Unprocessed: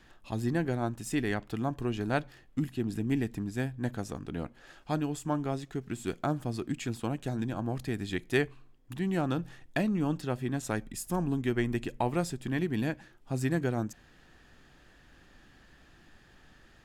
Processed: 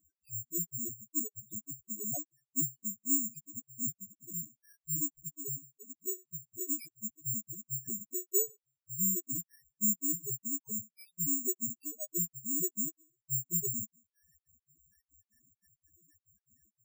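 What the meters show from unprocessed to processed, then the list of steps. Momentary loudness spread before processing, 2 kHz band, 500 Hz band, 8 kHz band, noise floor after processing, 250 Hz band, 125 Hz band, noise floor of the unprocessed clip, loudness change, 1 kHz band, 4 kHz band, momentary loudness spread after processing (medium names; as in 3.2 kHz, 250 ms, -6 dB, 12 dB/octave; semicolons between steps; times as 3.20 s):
7 LU, under -30 dB, -13.0 dB, +13.5 dB, under -85 dBFS, -11.0 dB, -13.0 dB, -59 dBFS, -1.0 dB, under -25 dB, under -20 dB, 12 LU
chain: spectral sustain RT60 0.42 s; reverb removal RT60 0.68 s; high-pass 58 Hz 24 dB/octave; static phaser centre 2.3 kHz, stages 4; level rider gain up to 5.5 dB; trance gate "x.xx.x.xxx." 142 bpm -60 dB; dynamic bell 1 kHz, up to +6 dB, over -44 dBFS, Q 0.76; loudest bins only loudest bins 1; careless resampling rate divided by 6×, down none, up zero stuff; trim -7 dB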